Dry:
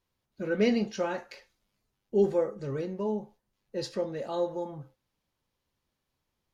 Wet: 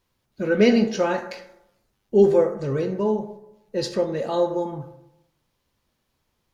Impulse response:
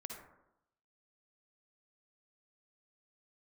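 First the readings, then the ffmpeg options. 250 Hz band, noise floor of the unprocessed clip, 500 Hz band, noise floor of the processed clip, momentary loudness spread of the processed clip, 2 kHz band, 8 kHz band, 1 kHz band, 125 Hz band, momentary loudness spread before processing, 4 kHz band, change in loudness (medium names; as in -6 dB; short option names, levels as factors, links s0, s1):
+8.5 dB, -83 dBFS, +9.0 dB, -74 dBFS, 14 LU, +8.5 dB, no reading, +9.0 dB, +8.5 dB, 13 LU, +8.0 dB, +8.5 dB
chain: -filter_complex "[0:a]asplit=2[s0][s1];[1:a]atrim=start_sample=2205[s2];[s1][s2]afir=irnorm=-1:irlink=0,volume=0.841[s3];[s0][s3]amix=inputs=2:normalize=0,volume=1.78"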